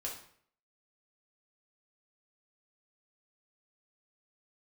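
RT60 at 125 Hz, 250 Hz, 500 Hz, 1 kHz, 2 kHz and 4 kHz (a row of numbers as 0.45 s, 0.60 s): 0.60 s, 0.60 s, 0.60 s, 0.55 s, 0.55 s, 0.50 s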